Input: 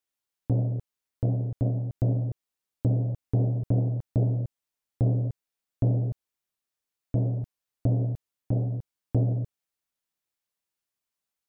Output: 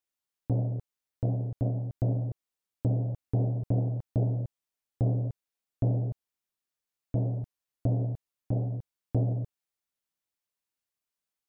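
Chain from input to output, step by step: dynamic EQ 820 Hz, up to +4 dB, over -47 dBFS, Q 1.6; gain -3 dB

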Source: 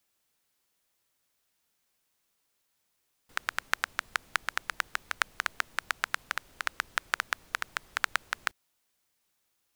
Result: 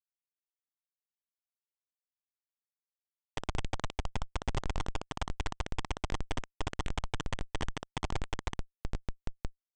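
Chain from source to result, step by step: bin magnitudes rounded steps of 30 dB; dynamic EQ 3800 Hz, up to +4 dB, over -50 dBFS, Q 3.5; sample leveller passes 5; HPF 44 Hz 12 dB/oct; comb 6.5 ms, depth 56%; diffused feedback echo 0.901 s, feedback 47%, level -10 dB; reverb RT60 0.60 s, pre-delay 61 ms, DRR 2 dB; compressor 3:1, threshold -39 dBFS, peak gain reduction 19 dB; Schmitt trigger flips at -29 dBFS; steep low-pass 8500 Hz 96 dB/oct; gain +11.5 dB

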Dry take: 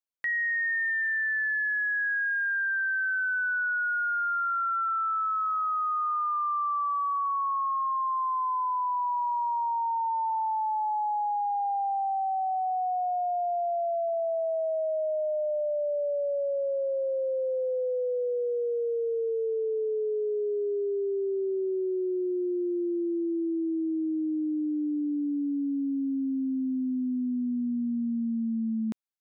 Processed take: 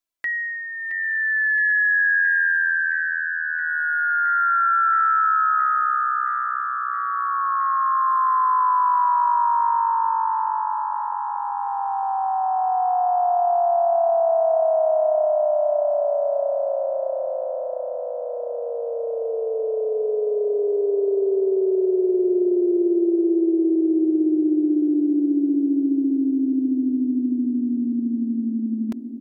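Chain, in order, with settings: comb 3 ms, depth 64%; on a send: thinning echo 0.669 s, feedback 77%, high-pass 190 Hz, level -9 dB; on the sum: gain +5 dB

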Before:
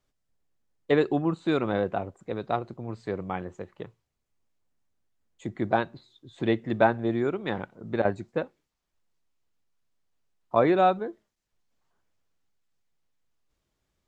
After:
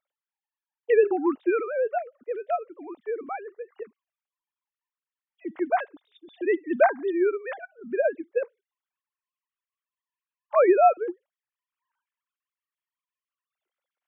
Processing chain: sine-wave speech; gain +2 dB

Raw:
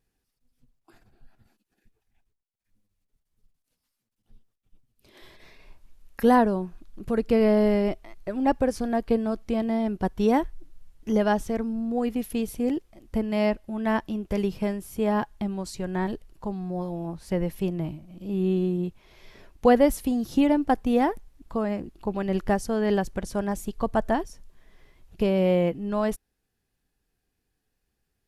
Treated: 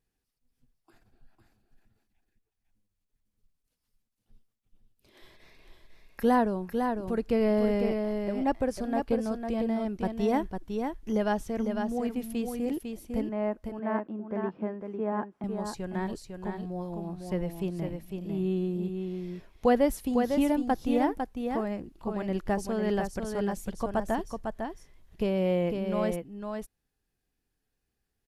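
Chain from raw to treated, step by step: 13.29–15.44 Chebyshev band-pass 240–1400 Hz, order 2; echo 0.502 s -5.5 dB; gain -5 dB

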